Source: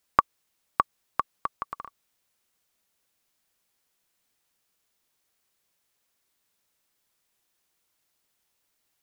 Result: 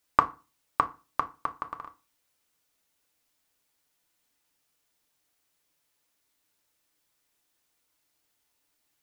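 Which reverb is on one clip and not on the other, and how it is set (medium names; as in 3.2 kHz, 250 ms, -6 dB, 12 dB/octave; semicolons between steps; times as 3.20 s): FDN reverb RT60 0.31 s, low-frequency decay 1.2×, high-frequency decay 0.8×, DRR 5.5 dB; trim -1 dB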